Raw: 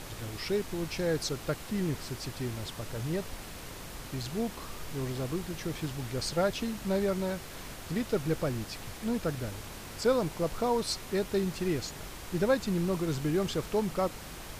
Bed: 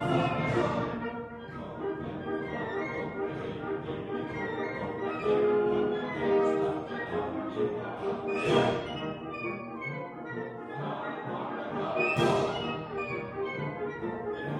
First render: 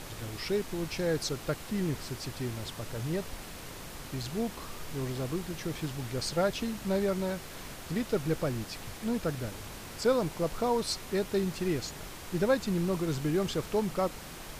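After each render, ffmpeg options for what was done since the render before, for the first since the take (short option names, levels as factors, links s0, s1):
-af "bandreject=f=50:t=h:w=4,bandreject=f=100:t=h:w=4"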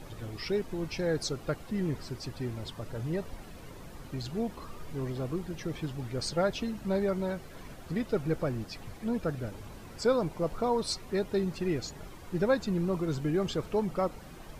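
-af "afftdn=nr=11:nf=-44"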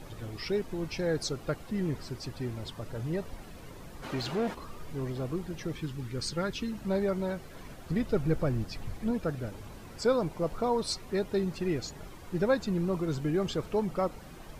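-filter_complex "[0:a]asplit=3[s0][s1][s2];[s0]afade=t=out:st=4.02:d=0.02[s3];[s1]asplit=2[s4][s5];[s5]highpass=f=720:p=1,volume=11.2,asoftclip=type=tanh:threshold=0.0841[s6];[s4][s6]amix=inputs=2:normalize=0,lowpass=f=2500:p=1,volume=0.501,afade=t=in:st=4.02:d=0.02,afade=t=out:st=4.53:d=0.02[s7];[s2]afade=t=in:st=4.53:d=0.02[s8];[s3][s7][s8]amix=inputs=3:normalize=0,asettb=1/sr,asplit=3[s9][s10][s11];[s9]atrim=end=5.734[s12];[s10]atrim=start=5.73:end=6.72,asetpts=PTS-STARTPTS,afade=t=in:d=0.004:c=qsin,afade=t=out:st=0.986:d=0.004:c=qsin,equalizer=f=670:t=o:w=0.53:g=-14.5[s13];[s11]atrim=start=6.716[s14];[s12][s13]acrossfade=d=0.004:c1=hsin:c2=qsin[s15];[s15][s14]acrossfade=d=0.004:c1=qsin:c2=hsin,asettb=1/sr,asplit=3[s16][s17][s18];[s16]atrim=end=7.904[s19];[s17]atrim=start=7.9:end=9.11,asetpts=PTS-STARTPTS,afade=t=in:d=0.004:c=qsin,afade=t=out:st=1.206:d=0.004:c=qsin,lowshelf=f=130:g=9[s20];[s18]atrim=start=9.106[s21];[s19][s20]acrossfade=d=0.004:c1=hsin:c2=qsin[s22];[s22][s21]acrossfade=d=0.004:c1=qsin:c2=hsin"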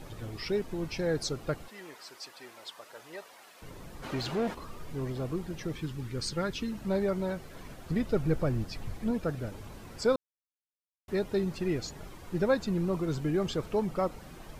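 -filter_complex "[0:a]asettb=1/sr,asplit=3[s0][s1][s2];[s0]atrim=end=1.684[s3];[s1]atrim=start=1.68:end=3.62,asetpts=PTS-STARTPTS,afade=t=in:d=0.004:c=qsin,afade=t=out:st=1.936:d=0.004:c=qsin,highpass=760[s4];[s2]atrim=start=3.616[s5];[s3][s4]acrossfade=d=0.004:c1=hsin:c2=qsin[s6];[s6][s5]acrossfade=d=0.004:c1=qsin:c2=hsin,asplit=3[s7][s8][s9];[s7]atrim=end=10.16,asetpts=PTS-STARTPTS,afade=t=out:st=10.156:d=0.004:c=hsin[s10];[s8]atrim=start=10.16:end=11.08,asetpts=PTS-STARTPTS,volume=0[s11];[s9]atrim=start=11.08,asetpts=PTS-STARTPTS,afade=t=in:d=0.004:c=hsin[s12];[s10][s11][s12]concat=n=3:v=0:a=1"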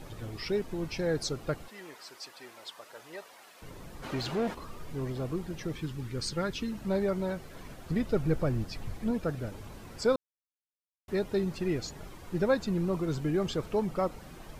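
-af anull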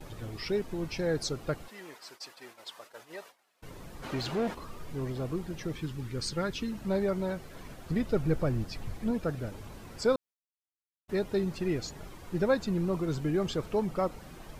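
-af "agate=range=0.112:threshold=0.00316:ratio=16:detection=peak"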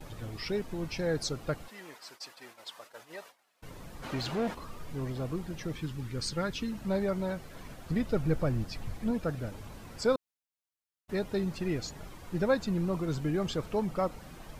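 -af "equalizer=f=380:t=o:w=0.42:g=-3.5"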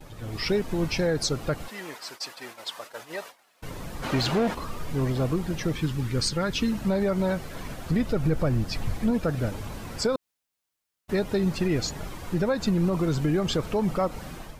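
-af "alimiter=level_in=1.19:limit=0.0631:level=0:latency=1:release=117,volume=0.841,dynaudnorm=f=120:g=5:m=2.99"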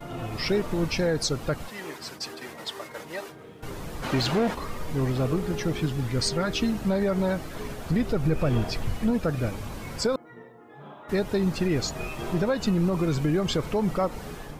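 -filter_complex "[1:a]volume=0.316[s0];[0:a][s0]amix=inputs=2:normalize=0"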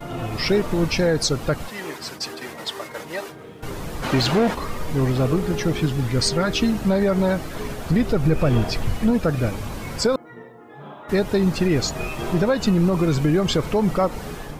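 -af "volume=1.88"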